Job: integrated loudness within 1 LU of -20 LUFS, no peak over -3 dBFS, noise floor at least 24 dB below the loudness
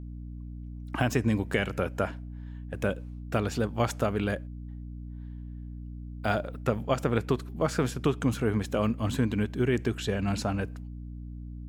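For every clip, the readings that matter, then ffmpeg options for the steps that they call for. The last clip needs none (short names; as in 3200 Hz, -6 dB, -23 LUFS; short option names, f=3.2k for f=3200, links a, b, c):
hum 60 Hz; harmonics up to 300 Hz; hum level -37 dBFS; loudness -29.5 LUFS; peak -11.0 dBFS; loudness target -20.0 LUFS
-> -af "bandreject=f=60:t=h:w=4,bandreject=f=120:t=h:w=4,bandreject=f=180:t=h:w=4,bandreject=f=240:t=h:w=4,bandreject=f=300:t=h:w=4"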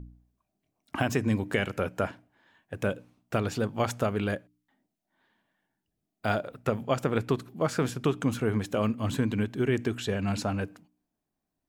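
hum none; loudness -30.0 LUFS; peak -11.5 dBFS; loudness target -20.0 LUFS
-> -af "volume=10dB,alimiter=limit=-3dB:level=0:latency=1"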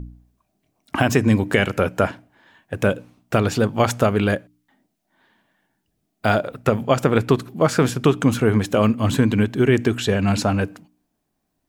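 loudness -20.0 LUFS; peak -3.0 dBFS; noise floor -74 dBFS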